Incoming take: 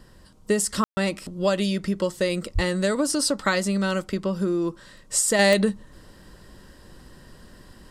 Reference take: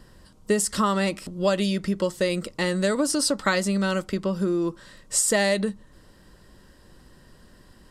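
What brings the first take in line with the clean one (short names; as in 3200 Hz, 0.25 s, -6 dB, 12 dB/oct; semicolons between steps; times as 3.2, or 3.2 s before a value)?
de-click; de-plosive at 2.54; room tone fill 0.84–0.97; gain 0 dB, from 5.39 s -4.5 dB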